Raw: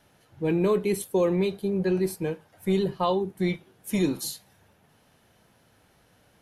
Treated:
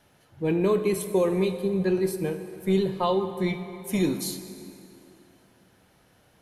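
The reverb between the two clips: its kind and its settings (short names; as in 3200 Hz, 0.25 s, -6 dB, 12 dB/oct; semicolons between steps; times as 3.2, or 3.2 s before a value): plate-style reverb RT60 2.9 s, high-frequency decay 0.75×, DRR 8.5 dB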